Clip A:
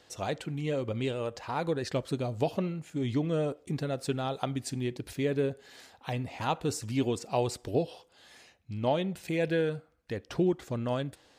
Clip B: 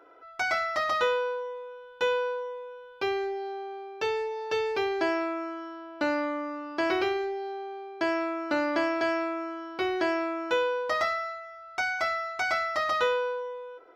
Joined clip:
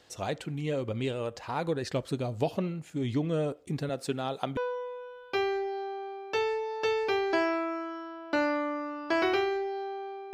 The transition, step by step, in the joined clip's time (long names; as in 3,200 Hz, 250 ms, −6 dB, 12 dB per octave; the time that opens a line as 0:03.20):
clip A
0:03.89–0:04.57: high-pass filter 150 Hz 12 dB per octave
0:04.57: continue with clip B from 0:02.25